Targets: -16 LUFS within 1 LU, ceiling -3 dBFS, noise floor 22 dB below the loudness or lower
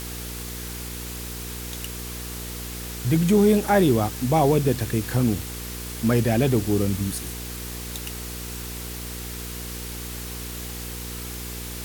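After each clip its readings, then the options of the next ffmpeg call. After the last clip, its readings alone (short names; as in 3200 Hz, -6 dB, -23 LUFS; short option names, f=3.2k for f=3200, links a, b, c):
hum 60 Hz; harmonics up to 480 Hz; hum level -34 dBFS; noise floor -34 dBFS; noise floor target -48 dBFS; loudness -25.5 LUFS; peak -8.0 dBFS; loudness target -16.0 LUFS
-> -af "bandreject=f=60:t=h:w=4,bandreject=f=120:t=h:w=4,bandreject=f=180:t=h:w=4,bandreject=f=240:t=h:w=4,bandreject=f=300:t=h:w=4,bandreject=f=360:t=h:w=4,bandreject=f=420:t=h:w=4,bandreject=f=480:t=h:w=4"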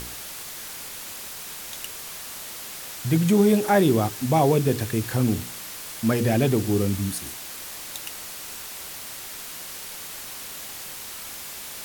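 hum none; noise floor -37 dBFS; noise floor target -48 dBFS
-> -af "afftdn=nr=11:nf=-37"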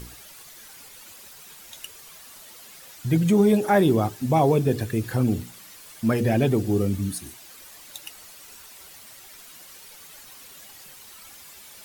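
noise floor -46 dBFS; loudness -22.5 LUFS; peak -8.0 dBFS; loudness target -16.0 LUFS
-> -af "volume=6.5dB,alimiter=limit=-3dB:level=0:latency=1"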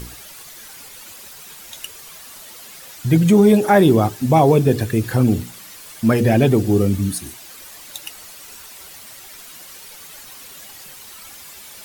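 loudness -16.0 LUFS; peak -3.0 dBFS; noise floor -40 dBFS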